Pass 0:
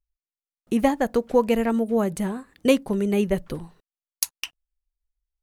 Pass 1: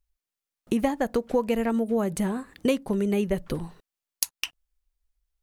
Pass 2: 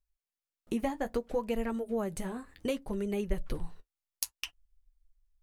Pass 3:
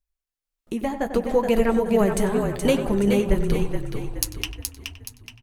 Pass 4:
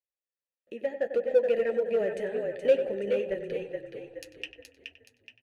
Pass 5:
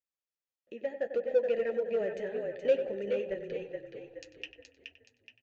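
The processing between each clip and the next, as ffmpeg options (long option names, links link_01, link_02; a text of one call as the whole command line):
ffmpeg -i in.wav -af "acompressor=threshold=-31dB:ratio=2.5,volume=5.5dB" out.wav
ffmpeg -i in.wav -af "asubboost=boost=7:cutoff=71,flanger=delay=4.6:depth=7.8:regen=-43:speed=0.64:shape=sinusoidal,volume=-3.5dB" out.wav
ffmpeg -i in.wav -filter_complex "[0:a]asplit=2[link_01][link_02];[link_02]adelay=95,lowpass=frequency=2500:poles=1,volume=-11dB,asplit=2[link_03][link_04];[link_04]adelay=95,lowpass=frequency=2500:poles=1,volume=0.54,asplit=2[link_05][link_06];[link_06]adelay=95,lowpass=frequency=2500:poles=1,volume=0.54,asplit=2[link_07][link_08];[link_08]adelay=95,lowpass=frequency=2500:poles=1,volume=0.54,asplit=2[link_09][link_10];[link_10]adelay=95,lowpass=frequency=2500:poles=1,volume=0.54,asplit=2[link_11][link_12];[link_12]adelay=95,lowpass=frequency=2500:poles=1,volume=0.54[link_13];[link_03][link_05][link_07][link_09][link_11][link_13]amix=inputs=6:normalize=0[link_14];[link_01][link_14]amix=inputs=2:normalize=0,dynaudnorm=framelen=200:gausssize=11:maxgain=13dB,asplit=2[link_15][link_16];[link_16]asplit=5[link_17][link_18][link_19][link_20][link_21];[link_17]adelay=423,afreqshift=-32,volume=-5.5dB[link_22];[link_18]adelay=846,afreqshift=-64,volume=-13dB[link_23];[link_19]adelay=1269,afreqshift=-96,volume=-20.6dB[link_24];[link_20]adelay=1692,afreqshift=-128,volume=-28.1dB[link_25];[link_21]adelay=2115,afreqshift=-160,volume=-35.6dB[link_26];[link_22][link_23][link_24][link_25][link_26]amix=inputs=5:normalize=0[link_27];[link_15][link_27]amix=inputs=2:normalize=0" out.wav
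ffmpeg -i in.wav -filter_complex "[0:a]asplit=3[link_01][link_02][link_03];[link_01]bandpass=frequency=530:width_type=q:width=8,volume=0dB[link_04];[link_02]bandpass=frequency=1840:width_type=q:width=8,volume=-6dB[link_05];[link_03]bandpass=frequency=2480:width_type=q:width=8,volume=-9dB[link_06];[link_04][link_05][link_06]amix=inputs=3:normalize=0,asplit=2[link_07][link_08];[link_08]asoftclip=type=hard:threshold=-27.5dB,volume=-6dB[link_09];[link_07][link_09]amix=inputs=2:normalize=0" out.wav
ffmpeg -i in.wav -af "aresample=16000,aresample=44100,volume=-4dB" out.wav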